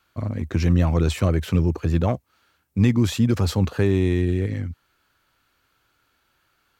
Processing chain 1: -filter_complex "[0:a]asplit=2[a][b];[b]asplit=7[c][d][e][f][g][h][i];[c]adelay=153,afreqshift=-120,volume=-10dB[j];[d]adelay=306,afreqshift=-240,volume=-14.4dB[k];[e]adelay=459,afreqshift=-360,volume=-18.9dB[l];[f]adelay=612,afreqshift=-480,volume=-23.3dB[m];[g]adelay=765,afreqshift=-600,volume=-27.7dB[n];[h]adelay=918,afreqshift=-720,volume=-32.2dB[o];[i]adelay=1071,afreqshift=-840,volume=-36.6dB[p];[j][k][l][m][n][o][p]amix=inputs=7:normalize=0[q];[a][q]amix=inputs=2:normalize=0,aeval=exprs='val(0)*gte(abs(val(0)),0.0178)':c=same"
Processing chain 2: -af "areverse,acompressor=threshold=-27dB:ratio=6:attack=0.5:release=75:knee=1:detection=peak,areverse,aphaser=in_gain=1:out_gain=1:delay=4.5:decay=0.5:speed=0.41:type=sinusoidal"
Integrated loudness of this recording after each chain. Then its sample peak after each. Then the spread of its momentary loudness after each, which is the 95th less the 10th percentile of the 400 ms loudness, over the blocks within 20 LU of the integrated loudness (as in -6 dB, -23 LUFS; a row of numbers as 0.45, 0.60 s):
-21.5, -32.5 LUFS; -7.0, -19.5 dBFS; 12, 3 LU